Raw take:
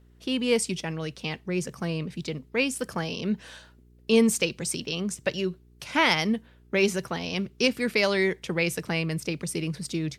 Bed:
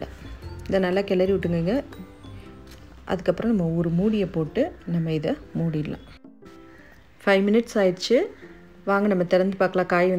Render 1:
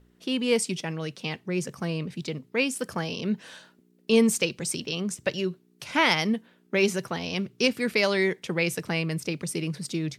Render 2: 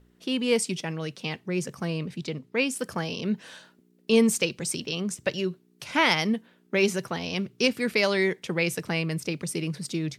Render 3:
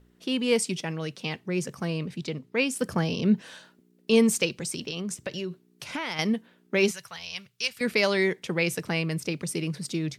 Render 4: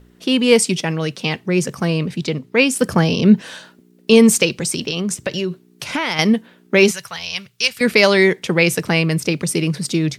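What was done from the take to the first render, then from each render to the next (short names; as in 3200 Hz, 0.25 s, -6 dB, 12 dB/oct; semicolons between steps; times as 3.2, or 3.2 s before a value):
de-hum 60 Hz, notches 2
2.16–2.7 high shelf 10000 Hz -7.5 dB
2.81–3.42 low shelf 360 Hz +8 dB; 4.59–6.19 compressor, threshold -28 dBFS; 6.91–7.81 passive tone stack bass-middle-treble 10-0-10
gain +11 dB; limiter -1 dBFS, peak gain reduction 2.5 dB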